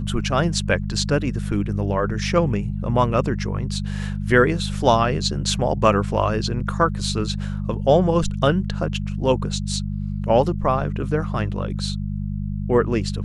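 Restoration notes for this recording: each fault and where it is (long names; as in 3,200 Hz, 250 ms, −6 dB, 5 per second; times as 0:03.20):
mains hum 50 Hz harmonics 4 −26 dBFS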